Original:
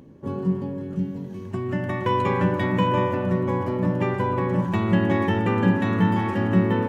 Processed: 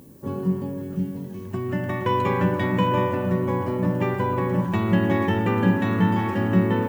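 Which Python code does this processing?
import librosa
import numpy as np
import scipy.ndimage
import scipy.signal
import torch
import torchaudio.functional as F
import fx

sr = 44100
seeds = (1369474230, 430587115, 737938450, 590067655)

y = fx.dmg_noise_colour(x, sr, seeds[0], colour='violet', level_db=-57.0)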